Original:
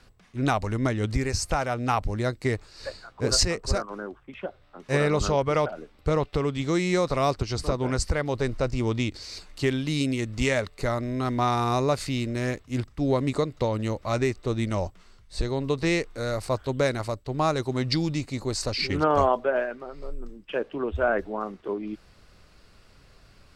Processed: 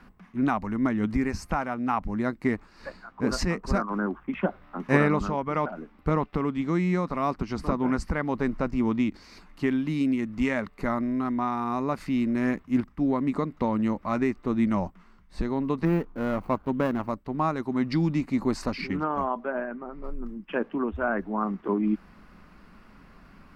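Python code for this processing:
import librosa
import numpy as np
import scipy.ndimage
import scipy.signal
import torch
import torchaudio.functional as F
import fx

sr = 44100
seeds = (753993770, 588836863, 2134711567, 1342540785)

y = fx.median_filter(x, sr, points=25, at=(15.85, 17.1))
y = fx.spacing_loss(y, sr, db_at_10k=26, at=(19.52, 20.04))
y = fx.graphic_eq(y, sr, hz=(125, 250, 500, 1000, 2000, 4000, 8000), db=(-11, 7, -5, 7, 3, -8, -11))
y = fx.rider(y, sr, range_db=10, speed_s=0.5)
y = fx.peak_eq(y, sr, hz=180.0, db=11.5, octaves=0.88)
y = y * 10.0 ** (-4.5 / 20.0)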